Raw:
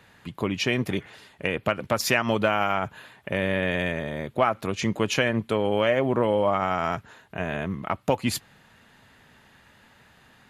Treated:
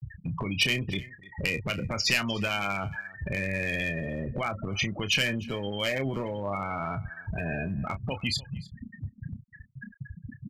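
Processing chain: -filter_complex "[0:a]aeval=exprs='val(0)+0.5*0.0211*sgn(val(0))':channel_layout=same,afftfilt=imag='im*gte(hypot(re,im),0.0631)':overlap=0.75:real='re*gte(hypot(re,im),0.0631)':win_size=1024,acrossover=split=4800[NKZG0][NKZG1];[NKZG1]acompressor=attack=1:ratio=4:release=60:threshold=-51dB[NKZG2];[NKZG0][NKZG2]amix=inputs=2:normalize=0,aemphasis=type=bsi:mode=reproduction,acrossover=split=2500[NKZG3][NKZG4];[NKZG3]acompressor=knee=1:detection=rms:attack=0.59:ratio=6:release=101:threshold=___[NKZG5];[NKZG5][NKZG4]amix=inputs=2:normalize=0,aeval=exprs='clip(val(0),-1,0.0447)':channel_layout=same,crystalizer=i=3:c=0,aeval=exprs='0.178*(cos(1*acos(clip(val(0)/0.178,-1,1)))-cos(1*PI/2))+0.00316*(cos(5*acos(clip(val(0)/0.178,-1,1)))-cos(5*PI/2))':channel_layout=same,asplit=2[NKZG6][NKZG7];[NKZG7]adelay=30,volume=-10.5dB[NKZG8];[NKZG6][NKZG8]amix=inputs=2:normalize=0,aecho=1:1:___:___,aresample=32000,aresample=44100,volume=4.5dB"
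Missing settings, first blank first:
-34dB, 301, 0.0794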